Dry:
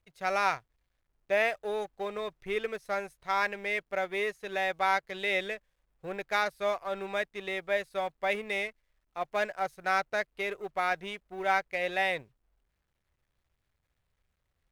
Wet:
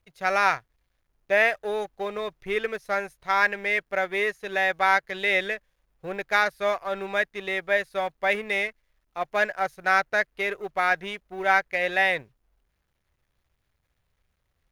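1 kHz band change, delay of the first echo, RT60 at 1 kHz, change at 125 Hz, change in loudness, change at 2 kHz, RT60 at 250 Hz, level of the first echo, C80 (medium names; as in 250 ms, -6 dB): +5.5 dB, no echo, no reverb, no reading, +6.5 dB, +8.5 dB, no reverb, no echo, no reverb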